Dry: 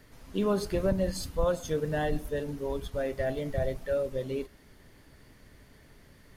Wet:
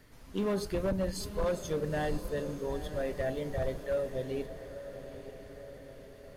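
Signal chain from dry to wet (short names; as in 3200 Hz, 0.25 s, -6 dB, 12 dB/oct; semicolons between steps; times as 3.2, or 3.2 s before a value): overloaded stage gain 23 dB; diffused feedback echo 0.923 s, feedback 57%, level -11.5 dB; gain -2.5 dB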